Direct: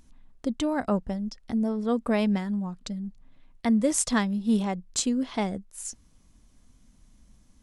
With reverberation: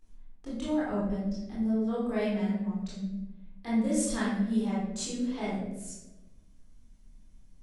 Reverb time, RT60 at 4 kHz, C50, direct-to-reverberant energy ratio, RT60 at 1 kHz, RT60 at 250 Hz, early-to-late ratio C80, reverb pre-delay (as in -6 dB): 1.0 s, 0.60 s, -1.0 dB, -9.5 dB, 0.80 s, 1.5 s, 3.5 dB, 19 ms